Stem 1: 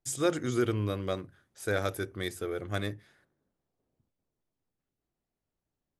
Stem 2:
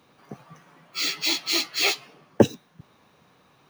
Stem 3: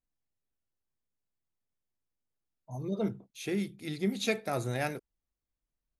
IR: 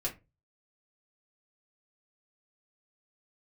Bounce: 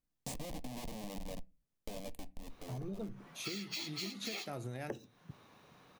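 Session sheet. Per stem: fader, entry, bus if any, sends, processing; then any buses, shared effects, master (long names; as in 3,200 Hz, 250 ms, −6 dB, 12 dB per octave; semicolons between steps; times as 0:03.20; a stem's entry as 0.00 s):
+2.0 dB, 0.20 s, no bus, send −18 dB, low-shelf EQ 61 Hz −5 dB; comparator with hysteresis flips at −31 dBFS; phaser with its sweep stopped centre 370 Hz, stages 6; automatic ducking −10 dB, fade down 0.90 s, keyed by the third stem
−3.0 dB, 2.50 s, bus A, send −21.5 dB, no processing
0.0 dB, 0.00 s, bus A, no send, parametric band 190 Hz +5.5 dB 2.2 octaves
bus A: 0.0 dB, downward compressor, threshold −29 dBFS, peak gain reduction 16 dB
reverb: on, RT60 0.25 s, pre-delay 3 ms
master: downward compressor 4 to 1, threshold −40 dBFS, peak gain reduction 15 dB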